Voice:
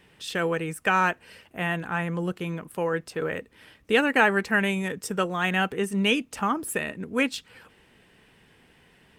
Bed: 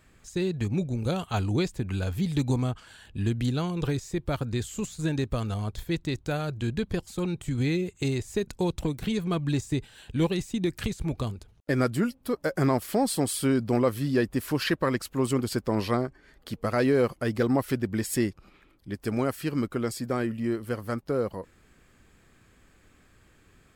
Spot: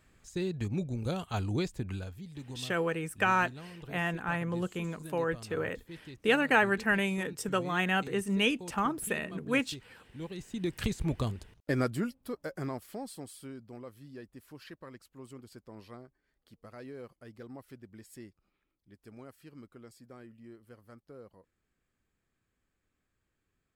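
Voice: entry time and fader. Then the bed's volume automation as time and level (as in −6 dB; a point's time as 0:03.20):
2.35 s, −4.5 dB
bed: 0:01.90 −5.5 dB
0:02.21 −18 dB
0:10.17 −18 dB
0:10.83 −1.5 dB
0:11.47 −1.5 dB
0:13.68 −22.5 dB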